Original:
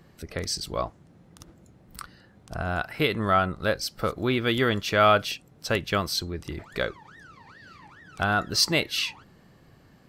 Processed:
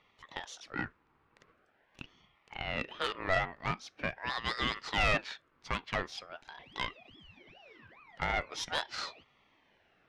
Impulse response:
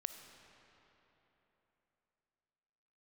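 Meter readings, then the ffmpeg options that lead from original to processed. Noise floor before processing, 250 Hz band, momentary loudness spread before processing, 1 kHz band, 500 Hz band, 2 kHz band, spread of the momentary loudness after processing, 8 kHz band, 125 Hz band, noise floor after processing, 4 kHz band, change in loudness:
-56 dBFS, -14.5 dB, 14 LU, -9.5 dB, -13.0 dB, -6.0 dB, 17 LU, -15.0 dB, -12.0 dB, -71 dBFS, -10.0 dB, -9.5 dB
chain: -af "highpass=500,lowpass=2.5k,aeval=exprs='(tanh(10*val(0)+0.55)-tanh(0.55))/10':c=same,aeval=exprs='val(0)*sin(2*PI*1100*n/s+1100*0.45/0.43*sin(2*PI*0.43*n/s))':c=same"

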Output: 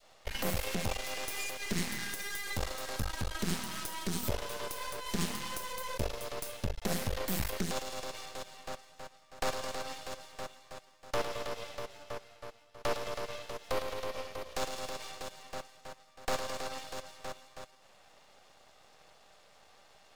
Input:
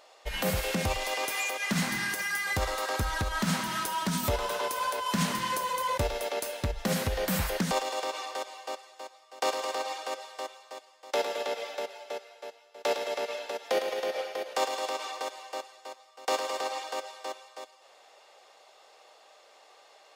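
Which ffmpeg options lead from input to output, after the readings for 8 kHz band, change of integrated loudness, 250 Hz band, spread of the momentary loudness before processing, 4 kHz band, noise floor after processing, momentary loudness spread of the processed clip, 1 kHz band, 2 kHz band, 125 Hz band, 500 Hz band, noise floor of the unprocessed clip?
-4.0 dB, -6.5 dB, -5.5 dB, 12 LU, -5.5 dB, -61 dBFS, 11 LU, -9.0 dB, -7.5 dB, -5.0 dB, -7.0 dB, -58 dBFS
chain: -af "adynamicequalizer=threshold=0.00562:dfrequency=1100:dqfactor=0.71:tfrequency=1100:tqfactor=0.71:attack=5:release=100:ratio=0.375:range=3.5:mode=cutabove:tftype=bell,aeval=exprs='max(val(0),0)':c=same"

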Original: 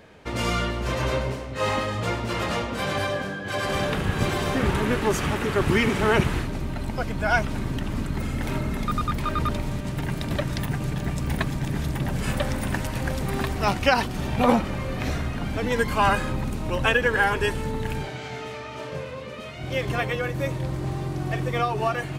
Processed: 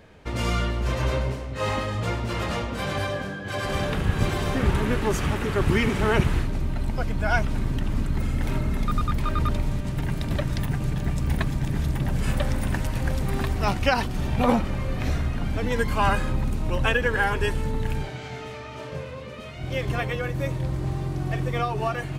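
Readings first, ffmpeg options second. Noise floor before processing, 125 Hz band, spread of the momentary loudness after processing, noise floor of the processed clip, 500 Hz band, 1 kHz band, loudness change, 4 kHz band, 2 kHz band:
-35 dBFS, +2.0 dB, 7 LU, -36 dBFS, -2.0 dB, -2.5 dB, -0.5 dB, -2.5 dB, -2.5 dB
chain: -af "lowshelf=f=96:g=10,volume=-2.5dB"

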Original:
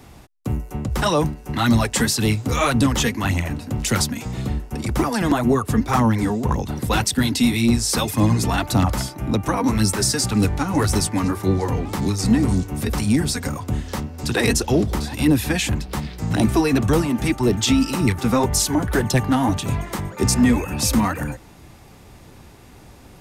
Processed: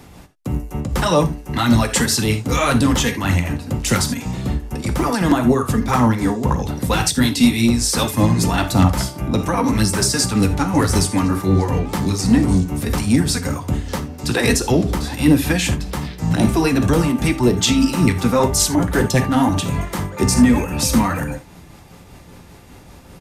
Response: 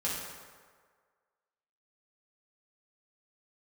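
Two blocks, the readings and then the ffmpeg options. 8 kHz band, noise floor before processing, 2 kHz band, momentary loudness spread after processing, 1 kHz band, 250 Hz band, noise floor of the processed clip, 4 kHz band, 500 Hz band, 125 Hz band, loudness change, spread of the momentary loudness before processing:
+2.5 dB, -45 dBFS, +2.5 dB, 9 LU, +2.5 dB, +3.0 dB, -43 dBFS, +2.5 dB, +2.5 dB, +2.5 dB, +2.5 dB, 8 LU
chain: -filter_complex "[0:a]aresample=32000,aresample=44100,asplit=2[a][b];[1:a]atrim=start_sample=2205,atrim=end_sample=3969[c];[b][c]afir=irnorm=-1:irlink=0,volume=-7.5dB[d];[a][d]amix=inputs=2:normalize=0,tremolo=f=5.1:d=0.32,volume=1dB"

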